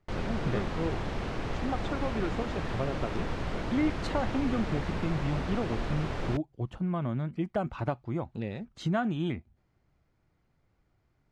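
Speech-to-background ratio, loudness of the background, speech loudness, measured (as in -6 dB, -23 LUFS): 2.0 dB, -35.5 LUFS, -33.5 LUFS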